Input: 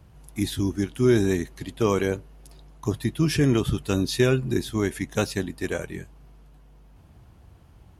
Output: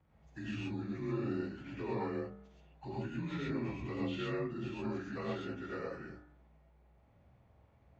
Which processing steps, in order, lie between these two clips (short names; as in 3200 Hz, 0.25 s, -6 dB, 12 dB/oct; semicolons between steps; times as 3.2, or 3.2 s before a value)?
inharmonic rescaling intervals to 88%; LPF 2300 Hz 12 dB/oct; gate -46 dBFS, range -7 dB; low shelf 340 Hz -8 dB; de-hum 49.83 Hz, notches 37; compressor 2:1, threshold -46 dBFS, peak gain reduction 13.5 dB; non-linear reverb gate 0.15 s rising, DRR -4.5 dB; gain -3 dB